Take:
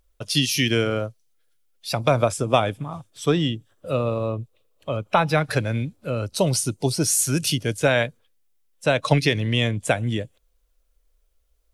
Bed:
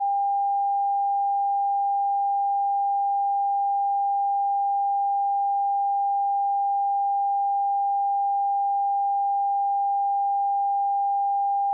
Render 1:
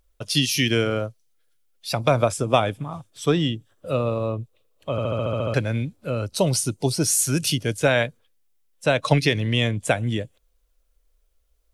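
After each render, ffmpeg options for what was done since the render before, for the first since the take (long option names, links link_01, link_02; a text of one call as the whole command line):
ffmpeg -i in.wav -filter_complex "[0:a]asplit=10[link_01][link_02][link_03][link_04][link_05][link_06][link_07][link_08][link_09][link_10];[link_01]atrim=end=4.982[link_11];[link_02]atrim=start=4.908:end=4.982[link_12];[link_03]atrim=start=4.908:end=4.982[link_13];[link_04]atrim=start=4.908:end=4.982[link_14];[link_05]atrim=start=4.908:end=4.982[link_15];[link_06]atrim=start=4.908:end=4.982[link_16];[link_07]atrim=start=4.908:end=4.982[link_17];[link_08]atrim=start=4.908:end=4.982[link_18];[link_09]atrim=start=4.908:end=4.982[link_19];[link_10]atrim=start=5.538[link_20];[link_11][link_12]acrossfade=duration=0.004:curve1=hsin:curve2=hsin[link_21];[link_21][link_13]acrossfade=duration=0.004:curve1=hsin:curve2=hsin[link_22];[link_22][link_14]acrossfade=duration=0.004:curve1=hsin:curve2=hsin[link_23];[link_23][link_15]acrossfade=duration=0.004:curve1=hsin:curve2=hsin[link_24];[link_24][link_16]acrossfade=duration=0.004:curve1=hsin:curve2=hsin[link_25];[link_25][link_17]acrossfade=duration=0.004:curve1=hsin:curve2=hsin[link_26];[link_26][link_18]acrossfade=duration=0.004:curve1=hsin:curve2=hsin[link_27];[link_27][link_19]acrossfade=duration=0.004:curve1=hsin:curve2=hsin[link_28];[link_28][link_20]acrossfade=duration=0.004:curve1=hsin:curve2=hsin" out.wav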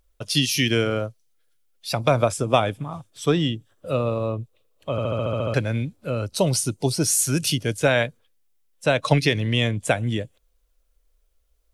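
ffmpeg -i in.wav -af anull out.wav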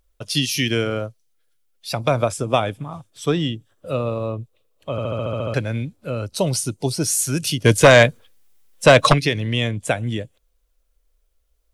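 ffmpeg -i in.wav -filter_complex "[0:a]asplit=3[link_01][link_02][link_03];[link_01]afade=type=out:start_time=7.64:duration=0.02[link_04];[link_02]aeval=exprs='0.668*sin(PI/2*2.51*val(0)/0.668)':channel_layout=same,afade=type=in:start_time=7.64:duration=0.02,afade=type=out:start_time=9.12:duration=0.02[link_05];[link_03]afade=type=in:start_time=9.12:duration=0.02[link_06];[link_04][link_05][link_06]amix=inputs=3:normalize=0" out.wav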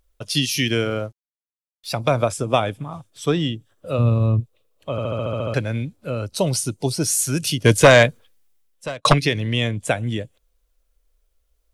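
ffmpeg -i in.wav -filter_complex "[0:a]asettb=1/sr,asplit=3[link_01][link_02][link_03];[link_01]atrim=end=0.764[link_04];[link_02]atrim=start=0.76:end=1.95,asetpts=PTS-STARTPTS,afade=type=in:duration=0.004:curve=qsin,afade=type=out:start_time=1.186:duration=0.004:curve=qsin,aeval=exprs='sgn(val(0))*max(abs(val(0))-0.00211,0)':channel_layout=same[link_05];[link_03]atrim=start=1.946[link_06];[link_04][link_05]acrossfade=duration=0.004:curve1=hsin:curve2=qsin[link_07];[link_07][link_06]acrossfade=duration=0.004:curve1=qsin:curve2=hsin,asplit=3[link_08][link_09][link_10];[link_08]afade=type=out:start_time=3.98:duration=0.02[link_11];[link_09]asubboost=boost=6:cutoff=210,afade=type=in:start_time=3.98:duration=0.02,afade=type=out:start_time=4.39:duration=0.02[link_12];[link_10]afade=type=in:start_time=4.39:duration=0.02[link_13];[link_11][link_12][link_13]amix=inputs=3:normalize=0,asplit=2[link_14][link_15];[link_14]atrim=end=9.05,asetpts=PTS-STARTPTS,afade=type=out:start_time=7.84:duration=1.21[link_16];[link_15]atrim=start=9.05,asetpts=PTS-STARTPTS,afade=type=in:duration=0.004:curve=hsin[link_17];[link_16][link_17]concat=n=2:v=0:a=1" out.wav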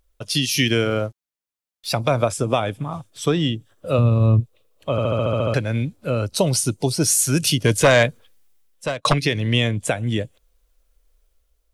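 ffmpeg -i in.wav -af "alimiter=limit=-11.5dB:level=0:latency=1:release=300,dynaudnorm=framelen=120:gausssize=7:maxgain=4dB" out.wav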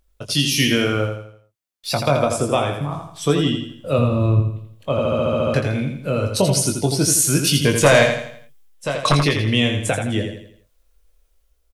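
ffmpeg -i in.wav -filter_complex "[0:a]asplit=2[link_01][link_02];[link_02]adelay=21,volume=-6.5dB[link_03];[link_01][link_03]amix=inputs=2:normalize=0,asplit=2[link_04][link_05];[link_05]aecho=0:1:83|166|249|332|415:0.501|0.21|0.0884|0.0371|0.0156[link_06];[link_04][link_06]amix=inputs=2:normalize=0" out.wav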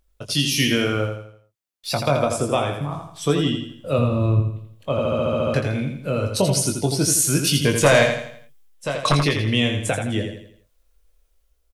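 ffmpeg -i in.wav -af "volume=-2dB" out.wav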